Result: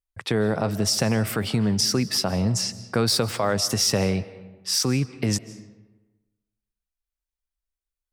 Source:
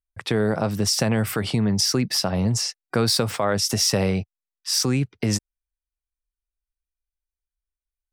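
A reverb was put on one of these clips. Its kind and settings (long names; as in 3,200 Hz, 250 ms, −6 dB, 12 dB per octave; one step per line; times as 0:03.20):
comb and all-pass reverb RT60 1.2 s, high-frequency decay 0.6×, pre-delay 115 ms, DRR 16 dB
level −1 dB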